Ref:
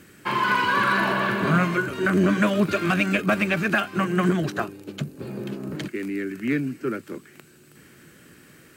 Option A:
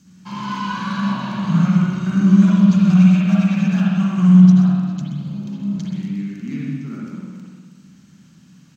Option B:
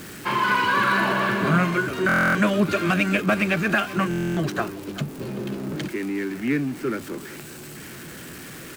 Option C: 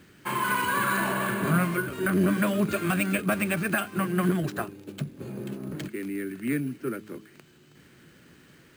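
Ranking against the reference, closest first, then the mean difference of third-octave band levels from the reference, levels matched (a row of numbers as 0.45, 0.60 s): C, B, A; 2.5, 5.0, 11.0 dB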